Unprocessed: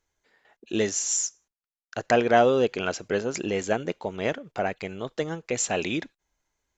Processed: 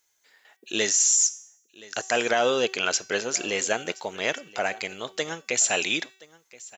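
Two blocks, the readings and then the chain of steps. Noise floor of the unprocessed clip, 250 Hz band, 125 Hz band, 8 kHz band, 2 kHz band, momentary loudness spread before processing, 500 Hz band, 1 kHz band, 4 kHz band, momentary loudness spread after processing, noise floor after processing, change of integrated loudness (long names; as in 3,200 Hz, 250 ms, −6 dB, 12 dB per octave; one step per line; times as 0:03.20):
below −85 dBFS, −6.0 dB, −9.5 dB, +7.0 dB, +4.0 dB, 12 LU, −3.0 dB, −2.5 dB, +8.0 dB, 13 LU, −70 dBFS, +2.0 dB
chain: spectral tilt +4 dB per octave
hum removal 381.1 Hz, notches 29
brickwall limiter −13.5 dBFS, peak gain reduction 9.5 dB
on a send: single-tap delay 1,024 ms −21.5 dB
on the sum: level +2 dB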